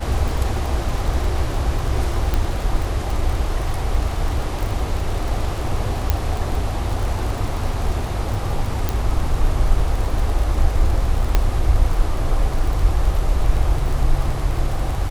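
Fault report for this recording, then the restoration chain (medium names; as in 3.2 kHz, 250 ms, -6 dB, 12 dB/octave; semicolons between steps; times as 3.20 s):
crackle 34 per s -24 dBFS
2.34 s: pop -7 dBFS
6.10 s: pop -4 dBFS
8.89 s: pop
11.35 s: pop -3 dBFS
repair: de-click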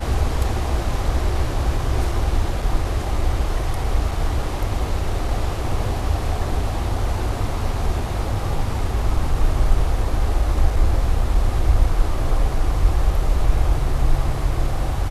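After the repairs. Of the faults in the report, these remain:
8.89 s: pop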